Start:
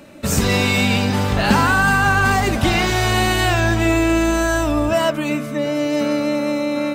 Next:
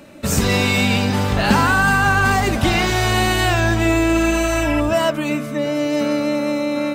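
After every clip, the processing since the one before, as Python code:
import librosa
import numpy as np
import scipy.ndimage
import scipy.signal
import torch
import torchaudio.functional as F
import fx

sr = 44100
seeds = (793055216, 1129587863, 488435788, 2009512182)

y = fx.spec_repair(x, sr, seeds[0], start_s=4.16, length_s=0.62, low_hz=980.0, high_hz=3600.0, source='before')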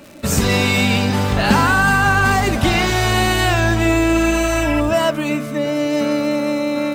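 y = fx.dmg_crackle(x, sr, seeds[1], per_s=240.0, level_db=-32.0)
y = F.gain(torch.from_numpy(y), 1.0).numpy()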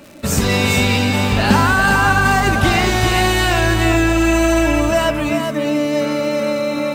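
y = x + 10.0 ** (-5.5 / 20.0) * np.pad(x, (int(400 * sr / 1000.0), 0))[:len(x)]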